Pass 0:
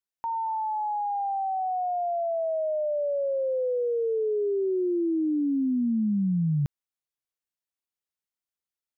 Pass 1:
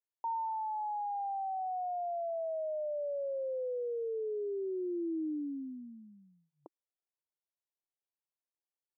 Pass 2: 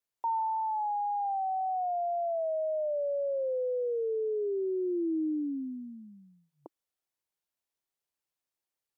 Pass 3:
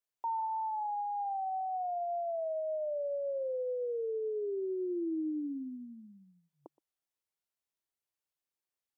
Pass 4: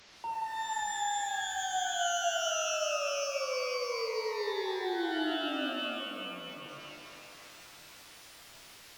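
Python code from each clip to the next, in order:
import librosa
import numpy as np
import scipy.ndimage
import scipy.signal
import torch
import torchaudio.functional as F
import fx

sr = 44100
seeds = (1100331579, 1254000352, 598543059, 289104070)

y1 = scipy.signal.sosfilt(scipy.signal.ellip(3, 1.0, 40, [320.0, 1000.0], 'bandpass', fs=sr, output='sos'), x)
y1 = fx.rider(y1, sr, range_db=10, speed_s=0.5)
y1 = y1 * librosa.db_to_amplitude(-8.0)
y2 = fx.vibrato(y1, sr, rate_hz=1.9, depth_cents=22.0)
y2 = y2 * librosa.db_to_amplitude(5.0)
y3 = y2 + 10.0 ** (-22.0 / 20.0) * np.pad(y2, (int(121 * sr / 1000.0), 0))[:len(y2)]
y3 = y3 * librosa.db_to_amplitude(-4.0)
y4 = fx.delta_mod(y3, sr, bps=32000, step_db=-48.0)
y4 = fx.rev_shimmer(y4, sr, seeds[0], rt60_s=3.0, semitones=12, shimmer_db=-2, drr_db=1.0)
y4 = y4 * librosa.db_to_amplitude(-2.5)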